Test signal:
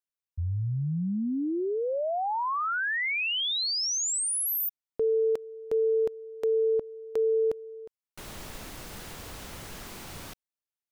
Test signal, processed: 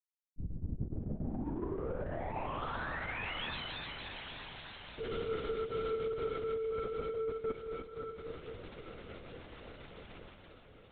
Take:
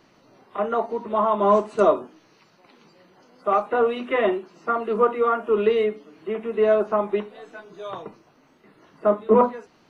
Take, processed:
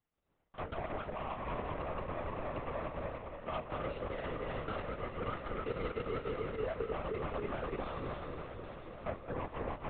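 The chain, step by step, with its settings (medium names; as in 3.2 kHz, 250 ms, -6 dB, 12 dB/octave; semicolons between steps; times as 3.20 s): backward echo that repeats 146 ms, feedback 77%, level -3 dB; reverse; compression 16:1, threshold -27 dBFS; reverse; peak limiter -24 dBFS; power-law waveshaper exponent 2; on a send: echo that smears into a reverb 863 ms, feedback 54%, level -9 dB; on the sum: LPC vocoder at 8 kHz whisper; trim -3 dB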